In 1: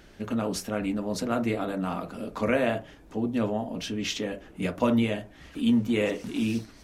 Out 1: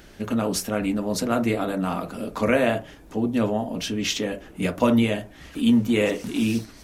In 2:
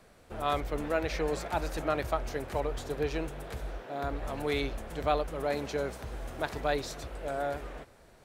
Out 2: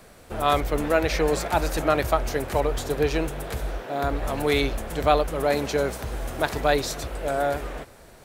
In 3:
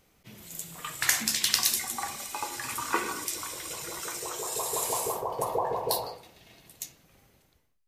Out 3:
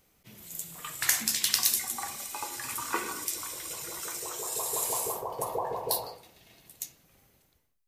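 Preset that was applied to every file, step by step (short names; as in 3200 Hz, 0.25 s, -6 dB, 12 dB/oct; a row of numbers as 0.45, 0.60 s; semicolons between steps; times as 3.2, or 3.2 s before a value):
high shelf 8400 Hz +7.5 dB; normalise peaks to -6 dBFS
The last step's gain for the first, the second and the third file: +4.5, +8.5, -3.5 dB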